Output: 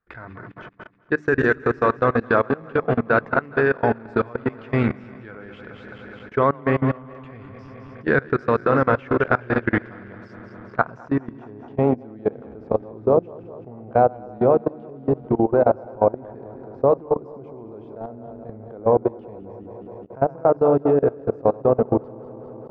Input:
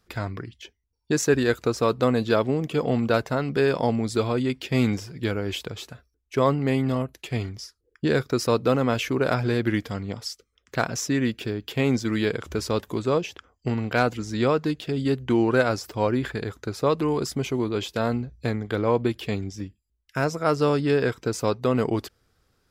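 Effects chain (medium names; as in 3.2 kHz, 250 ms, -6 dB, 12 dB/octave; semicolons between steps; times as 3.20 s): backward echo that repeats 105 ms, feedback 82%, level -9.5 dB; hum notches 50/100/150/200/250/300/350 Hz; level held to a coarse grid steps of 22 dB; low-pass sweep 1.6 kHz -> 730 Hz, 10.08–12.17 s; trim +4 dB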